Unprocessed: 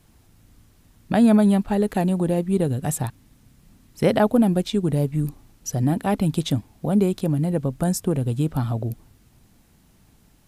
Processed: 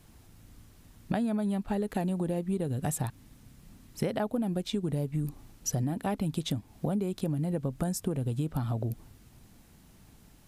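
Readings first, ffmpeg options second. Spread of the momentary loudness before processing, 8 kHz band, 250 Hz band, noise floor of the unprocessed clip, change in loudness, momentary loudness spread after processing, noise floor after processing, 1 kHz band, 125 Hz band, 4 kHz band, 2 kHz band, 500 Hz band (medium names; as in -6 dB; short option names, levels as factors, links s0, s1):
10 LU, -5.0 dB, -11.0 dB, -57 dBFS, -10.0 dB, 4 LU, -57 dBFS, -10.0 dB, -8.5 dB, -7.0 dB, -10.0 dB, -11.0 dB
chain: -af "acompressor=threshold=0.0447:ratio=10"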